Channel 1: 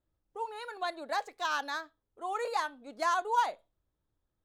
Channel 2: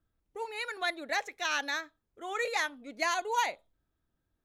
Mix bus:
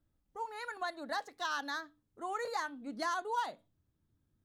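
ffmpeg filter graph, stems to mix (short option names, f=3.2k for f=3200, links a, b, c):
-filter_complex "[0:a]highpass=f=88:w=0.5412,highpass=f=88:w=1.3066,bandreject=f=60:t=h:w=6,bandreject=f=120:t=h:w=6,bandreject=f=180:t=h:w=6,bandreject=f=240:t=h:w=6,bandreject=f=300:t=h:w=6,asubboost=boost=5.5:cutoff=250,volume=-1dB,asplit=2[a][b];[1:a]lowshelf=f=380:t=q:w=1.5:g=8.5,volume=-8dB[c];[b]apad=whole_len=195883[d];[c][d]sidechaincompress=threshold=-34dB:ratio=8:attack=16:release=1170[e];[a][e]amix=inputs=2:normalize=0,acompressor=threshold=-37dB:ratio=1.5"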